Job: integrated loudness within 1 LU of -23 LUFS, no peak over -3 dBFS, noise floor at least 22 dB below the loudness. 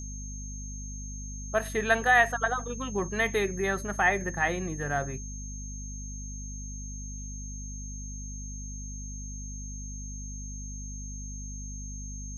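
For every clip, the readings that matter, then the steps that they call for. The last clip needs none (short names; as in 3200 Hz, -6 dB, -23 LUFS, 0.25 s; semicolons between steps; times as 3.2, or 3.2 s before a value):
hum 50 Hz; harmonics up to 250 Hz; hum level -37 dBFS; steady tone 6400 Hz; tone level -42 dBFS; loudness -31.5 LUFS; peak -10.0 dBFS; loudness target -23.0 LUFS
-> de-hum 50 Hz, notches 5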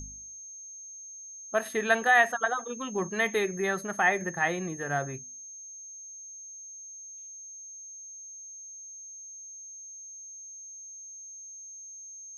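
hum none; steady tone 6400 Hz; tone level -42 dBFS
-> notch 6400 Hz, Q 30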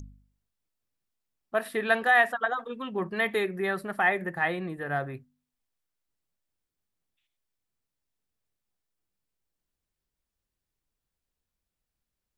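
steady tone none; loudness -27.5 LUFS; peak -10.0 dBFS; loudness target -23.0 LUFS
-> gain +4.5 dB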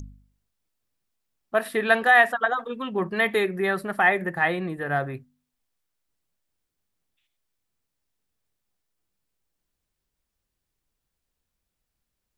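loudness -23.0 LUFS; peak -5.5 dBFS; noise floor -82 dBFS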